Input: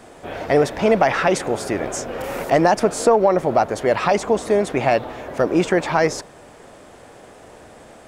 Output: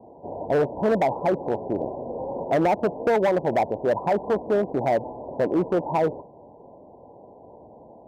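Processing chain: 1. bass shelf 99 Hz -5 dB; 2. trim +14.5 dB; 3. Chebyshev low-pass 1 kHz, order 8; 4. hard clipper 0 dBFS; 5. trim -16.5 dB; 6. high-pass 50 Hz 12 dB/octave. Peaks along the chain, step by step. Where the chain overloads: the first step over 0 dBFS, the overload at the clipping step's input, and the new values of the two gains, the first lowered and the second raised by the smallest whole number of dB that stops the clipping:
-3.5 dBFS, +11.0 dBFS, +10.0 dBFS, 0.0 dBFS, -16.5 dBFS, -13.5 dBFS; step 2, 10.0 dB; step 2 +4.5 dB, step 5 -6.5 dB

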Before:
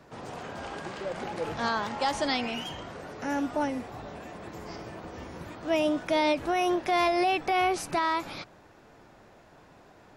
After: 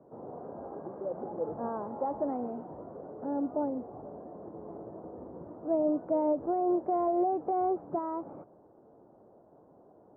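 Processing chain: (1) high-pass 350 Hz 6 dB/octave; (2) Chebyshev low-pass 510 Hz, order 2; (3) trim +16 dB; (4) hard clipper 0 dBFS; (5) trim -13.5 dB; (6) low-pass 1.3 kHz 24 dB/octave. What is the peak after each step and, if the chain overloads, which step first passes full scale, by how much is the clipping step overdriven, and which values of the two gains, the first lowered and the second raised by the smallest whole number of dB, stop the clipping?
-15.0 dBFS, -21.5 dBFS, -5.5 dBFS, -5.5 dBFS, -19.0 dBFS, -19.0 dBFS; nothing clips

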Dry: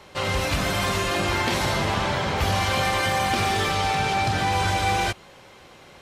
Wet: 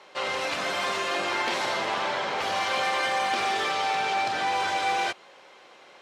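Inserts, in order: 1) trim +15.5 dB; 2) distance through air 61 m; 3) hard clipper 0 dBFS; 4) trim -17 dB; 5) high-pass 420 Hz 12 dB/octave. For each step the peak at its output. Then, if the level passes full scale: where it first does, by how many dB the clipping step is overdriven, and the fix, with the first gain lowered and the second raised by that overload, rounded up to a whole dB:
+6.0 dBFS, +5.0 dBFS, 0.0 dBFS, -17.0 dBFS, -14.0 dBFS; step 1, 5.0 dB; step 1 +10.5 dB, step 4 -12 dB

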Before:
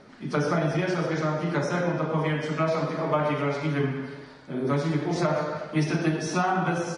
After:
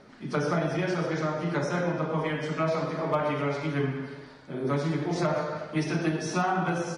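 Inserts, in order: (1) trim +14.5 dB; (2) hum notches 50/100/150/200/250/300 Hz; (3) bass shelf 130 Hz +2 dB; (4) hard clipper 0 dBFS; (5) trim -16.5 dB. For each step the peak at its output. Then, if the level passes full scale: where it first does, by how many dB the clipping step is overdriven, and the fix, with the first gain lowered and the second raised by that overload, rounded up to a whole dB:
+2.5 dBFS, +3.0 dBFS, +3.0 dBFS, 0.0 dBFS, -16.5 dBFS; step 1, 3.0 dB; step 1 +11.5 dB, step 5 -13.5 dB

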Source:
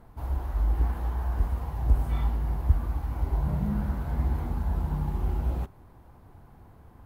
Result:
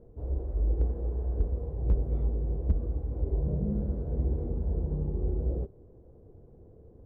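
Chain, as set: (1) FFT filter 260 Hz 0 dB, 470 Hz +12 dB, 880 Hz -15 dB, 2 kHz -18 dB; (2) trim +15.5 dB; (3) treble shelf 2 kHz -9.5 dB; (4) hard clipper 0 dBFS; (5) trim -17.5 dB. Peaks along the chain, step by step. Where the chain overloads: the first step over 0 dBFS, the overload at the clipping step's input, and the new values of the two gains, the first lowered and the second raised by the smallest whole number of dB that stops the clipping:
-9.0 dBFS, +6.5 dBFS, +6.5 dBFS, 0.0 dBFS, -17.5 dBFS; step 2, 6.5 dB; step 2 +8.5 dB, step 5 -10.5 dB

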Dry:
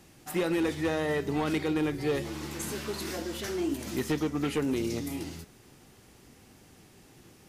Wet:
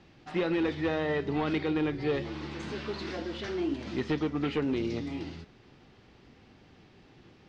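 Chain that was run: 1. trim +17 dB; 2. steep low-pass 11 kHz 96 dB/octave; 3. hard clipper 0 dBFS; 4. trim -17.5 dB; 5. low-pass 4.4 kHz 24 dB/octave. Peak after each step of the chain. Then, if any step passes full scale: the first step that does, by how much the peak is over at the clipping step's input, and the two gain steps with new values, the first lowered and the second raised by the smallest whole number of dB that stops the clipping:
-5.5 dBFS, -4.0 dBFS, -4.0 dBFS, -21.5 dBFS, -21.5 dBFS; nothing clips

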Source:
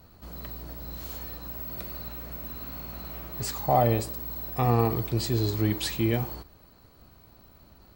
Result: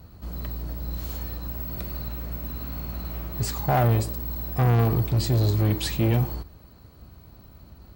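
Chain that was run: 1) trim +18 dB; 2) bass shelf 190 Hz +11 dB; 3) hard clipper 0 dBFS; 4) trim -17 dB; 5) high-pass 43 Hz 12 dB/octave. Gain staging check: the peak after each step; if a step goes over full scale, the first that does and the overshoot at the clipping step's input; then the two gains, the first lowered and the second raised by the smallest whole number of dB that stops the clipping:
+8.0 dBFS, +10.0 dBFS, 0.0 dBFS, -17.0 dBFS, -11.5 dBFS; step 1, 10.0 dB; step 1 +8 dB, step 4 -7 dB

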